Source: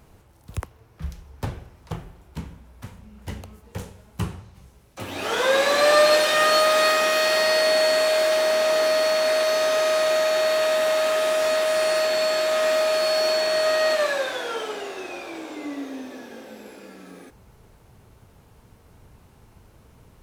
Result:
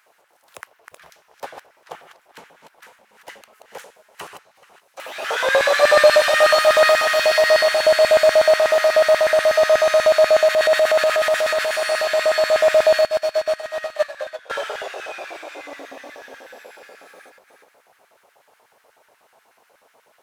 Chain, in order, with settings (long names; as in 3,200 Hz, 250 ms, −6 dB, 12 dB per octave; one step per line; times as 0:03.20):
delay that plays each chunk backwards 252 ms, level −6.5 dB
tape delay 433 ms, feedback 48%, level −17 dB, low-pass 4,400 Hz
auto-filter high-pass square 8.2 Hz 610–1,600 Hz
0:10.48–0:11.76: transient designer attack −6 dB, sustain +3 dB
0:13.01–0:14.50: expander for the loud parts 2.5 to 1, over −25 dBFS
level −1 dB